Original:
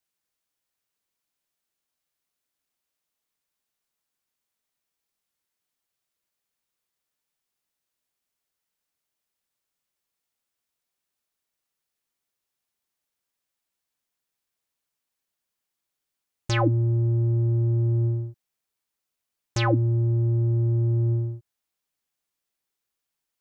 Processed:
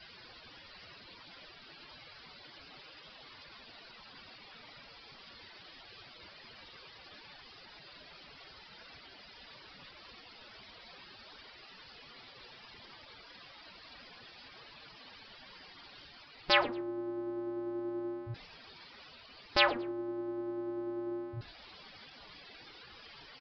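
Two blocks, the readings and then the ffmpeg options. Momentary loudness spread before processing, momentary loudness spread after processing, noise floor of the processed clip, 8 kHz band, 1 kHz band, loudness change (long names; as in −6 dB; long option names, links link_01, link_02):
10 LU, 14 LU, −55 dBFS, can't be measured, −1.0 dB, −10.5 dB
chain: -filter_complex "[0:a]aeval=exprs='val(0)+0.5*0.0168*sgn(val(0))':channel_layout=same,afftfilt=real='re*lt(hypot(re,im),0.251)':imag='im*lt(hypot(re,im),0.251)':win_size=1024:overlap=0.75,afftdn=noise_reduction=15:noise_floor=-47,agate=range=-6dB:threshold=-35dB:ratio=16:detection=peak,areverse,acompressor=mode=upward:threshold=-49dB:ratio=2.5,areverse,asplit=3[link_01][link_02][link_03];[link_02]adelay=112,afreqshift=-85,volume=-21.5dB[link_04];[link_03]adelay=224,afreqshift=-170,volume=-31.4dB[link_05];[link_01][link_04][link_05]amix=inputs=3:normalize=0,aresample=11025,aresample=44100,volume=5dB"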